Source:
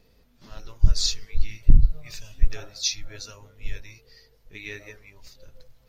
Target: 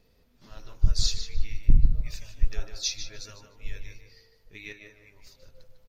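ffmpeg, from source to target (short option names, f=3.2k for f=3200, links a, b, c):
-filter_complex "[0:a]asettb=1/sr,asplit=3[a][b][c];[a]atrim=end=4.724[d];[b]atrim=start=4.72:end=5.22,asetpts=PTS-STARTPTS,afade=t=in:d=0.004:c=qsin,afade=t=out:st=0.496:d=0.004:c=qsin,acompressor=threshold=-45dB:ratio=10[e];[c]atrim=start=5.216[f];[d][e]acrossfade=d=0.004:c1=hsin:c2=qsin[g];[g][f]acrossfade=d=0.004:c1=qsin:c2=hsin,asplit=2[h][i];[i]adelay=151,lowpass=f=3.9k:p=1,volume=-7dB,asplit=2[j][k];[k]adelay=151,lowpass=f=3.9k:p=1,volume=0.28,asplit=2[l][m];[m]adelay=151,lowpass=f=3.9k:p=1,volume=0.28[n];[h][j][l][n]amix=inputs=4:normalize=0,volume=-4dB"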